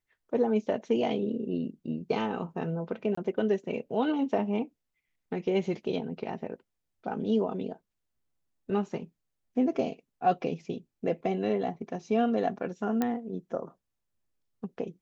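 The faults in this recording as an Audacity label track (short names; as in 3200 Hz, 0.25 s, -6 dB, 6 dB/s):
3.150000	3.170000	gap 24 ms
13.020000	13.020000	pop -15 dBFS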